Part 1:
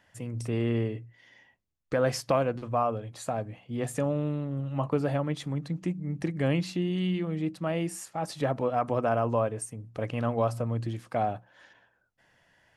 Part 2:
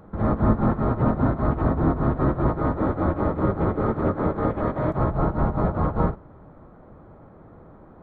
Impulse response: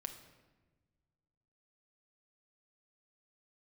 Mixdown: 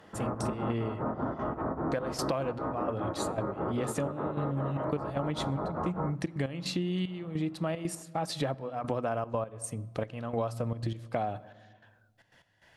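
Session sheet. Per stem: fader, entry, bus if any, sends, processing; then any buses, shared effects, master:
+2.0 dB, 0.00 s, send −9.5 dB, parametric band 3,900 Hz +5 dB 0.52 octaves; gate pattern "xxx.x..xxxx...x" 151 BPM −12 dB
−3.5 dB, 0.00 s, no send, high-pass filter 410 Hz 6 dB per octave; treble cut that deepens with the level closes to 1,500 Hz, closed at −24.5 dBFS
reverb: on, RT60 1.3 s, pre-delay 6 ms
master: downward compressor, threshold −28 dBFS, peak gain reduction 12 dB

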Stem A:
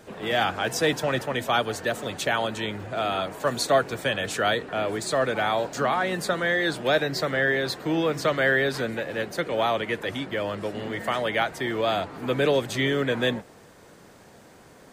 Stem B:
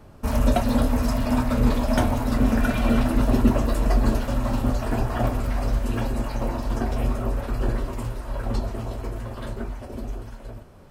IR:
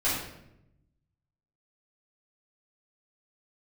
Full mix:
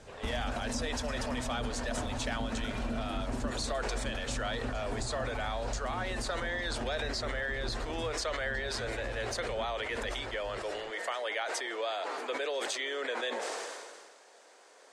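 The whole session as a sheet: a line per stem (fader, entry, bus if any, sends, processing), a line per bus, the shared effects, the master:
−5.5 dB, 0.00 s, no send, high-pass filter 430 Hz 24 dB per octave; level that may fall only so fast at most 34 dB per second
−8.0 dB, 0.00 s, no send, no processing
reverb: not used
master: low-pass filter 9,700 Hz 24 dB per octave; parametric band 5,700 Hz +4 dB 1.5 octaves; downward compressor, threshold −31 dBFS, peak gain reduction 12.5 dB

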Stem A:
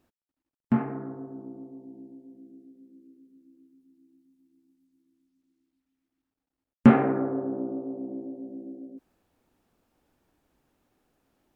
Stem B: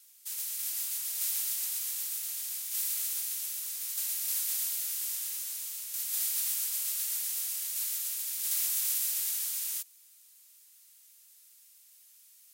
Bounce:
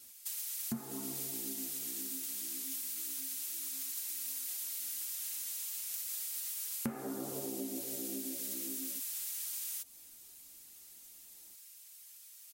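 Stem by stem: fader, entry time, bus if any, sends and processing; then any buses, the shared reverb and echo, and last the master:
−0.5 dB, 0.00 s, no send, string-ensemble chorus
+1.5 dB, 0.00 s, no send, low-shelf EQ 470 Hz +5 dB; comb filter 5.7 ms, depth 79%; downward compressor 4 to 1, threshold −37 dBFS, peak gain reduction 10.5 dB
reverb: not used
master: downward compressor 8 to 1, threshold −36 dBFS, peak gain reduction 22.5 dB

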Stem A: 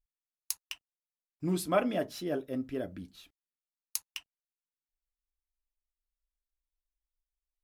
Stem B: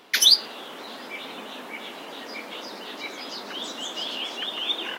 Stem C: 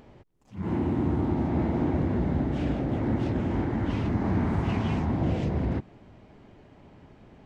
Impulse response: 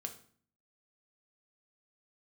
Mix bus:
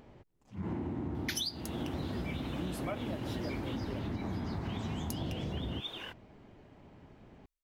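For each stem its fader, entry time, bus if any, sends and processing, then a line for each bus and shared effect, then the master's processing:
−2.5 dB, 1.15 s, no send, no processing
0:03.52 −2.5 dB → 0:04.13 −12 dB, 1.15 s, no send, no processing
−4.0 dB, 0.00 s, no send, no processing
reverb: not used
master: downward compressor 12 to 1, threshold −33 dBFS, peak gain reduction 20 dB

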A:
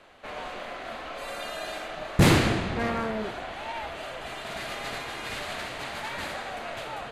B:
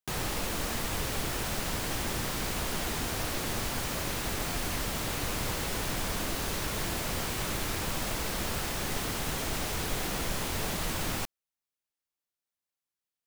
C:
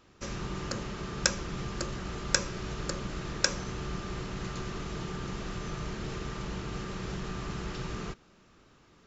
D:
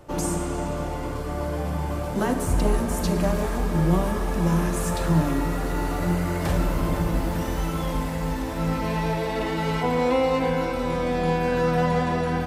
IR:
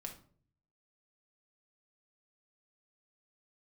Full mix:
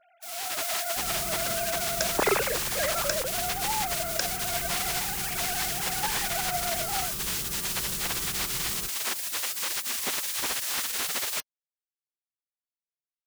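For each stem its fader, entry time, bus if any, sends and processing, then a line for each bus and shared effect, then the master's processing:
−11.5 dB, 0.00 s, no send, three sine waves on the formant tracks
0.0 dB, 0.15 s, no send, gate on every frequency bin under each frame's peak −20 dB weak
−12.5 dB, 0.75 s, no send, no processing
muted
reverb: not used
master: automatic gain control gain up to 8 dB

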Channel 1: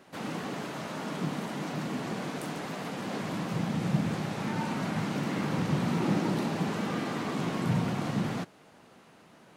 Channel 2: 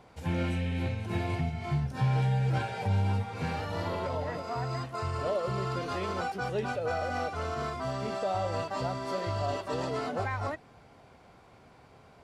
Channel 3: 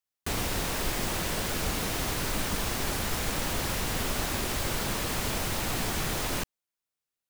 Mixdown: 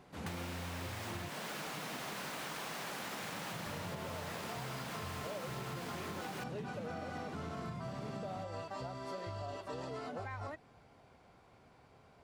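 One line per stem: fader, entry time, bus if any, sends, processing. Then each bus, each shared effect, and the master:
−9.5 dB, 0.00 s, bus A, no send, no processing
−6.5 dB, 0.00 s, muted 0:01.29–0:03.66, no bus, no send, no processing
+2.0 dB, 0.00 s, bus A, no send, high-pass filter 600 Hz 12 dB per octave; high-shelf EQ 4,400 Hz −10 dB
bus A: 0.0 dB, low-shelf EQ 150 Hz +10 dB; downward compressor, threshold −36 dBFS, peak gain reduction 11.5 dB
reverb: not used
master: downward compressor, threshold −39 dBFS, peak gain reduction 8.5 dB

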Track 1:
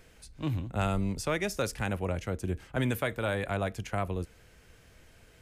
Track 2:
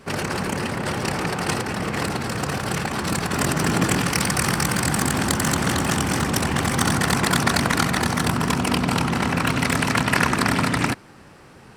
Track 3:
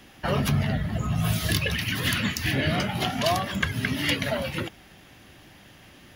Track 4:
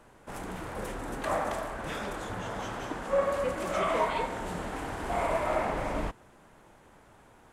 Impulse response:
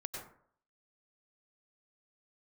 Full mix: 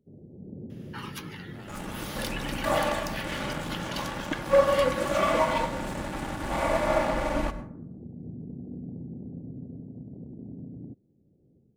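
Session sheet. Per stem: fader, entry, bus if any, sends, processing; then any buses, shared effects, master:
−12.0 dB, 0.80 s, no send, downward compressor 3 to 1, threshold −37 dBFS, peak gain reduction 9.5 dB
−16.0 dB, 0.00 s, no send, low-shelf EQ 76 Hz −12 dB; automatic gain control gain up to 12.5 dB; Gaussian smoothing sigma 23 samples
−9.0 dB, 0.70 s, no send, Chebyshev high-pass filter 820 Hz, order 8
0.0 dB, 1.40 s, send −6.5 dB, comb filter 3.5 ms, depth 96%; dead-zone distortion −37.5 dBFS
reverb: on, RT60 0.60 s, pre-delay 87 ms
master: no processing

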